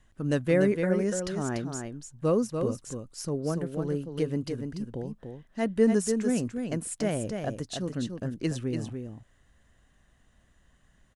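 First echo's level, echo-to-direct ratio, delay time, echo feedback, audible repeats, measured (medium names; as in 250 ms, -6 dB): -6.0 dB, -6.0 dB, 291 ms, no regular repeats, 1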